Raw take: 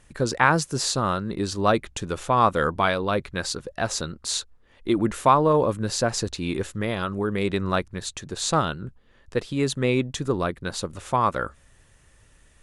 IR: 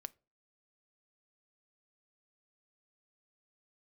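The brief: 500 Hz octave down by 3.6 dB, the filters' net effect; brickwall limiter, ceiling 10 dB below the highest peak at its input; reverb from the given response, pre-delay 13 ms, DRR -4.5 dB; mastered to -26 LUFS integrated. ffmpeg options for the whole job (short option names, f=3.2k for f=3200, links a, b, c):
-filter_complex "[0:a]equalizer=f=500:t=o:g=-4.5,alimiter=limit=-13.5dB:level=0:latency=1,asplit=2[a][b];[1:a]atrim=start_sample=2205,adelay=13[c];[b][c]afir=irnorm=-1:irlink=0,volume=9dB[d];[a][d]amix=inputs=2:normalize=0,volume=-4.5dB"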